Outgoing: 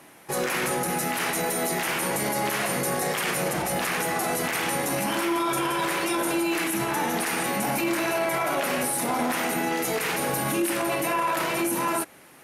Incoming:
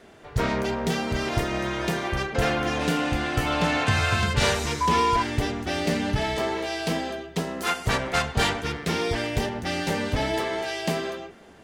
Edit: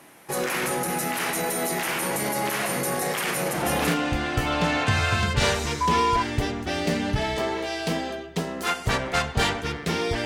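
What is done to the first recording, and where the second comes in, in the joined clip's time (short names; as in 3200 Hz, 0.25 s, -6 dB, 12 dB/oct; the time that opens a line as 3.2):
outgoing
3.78 switch to incoming from 2.78 s, crossfade 0.32 s logarithmic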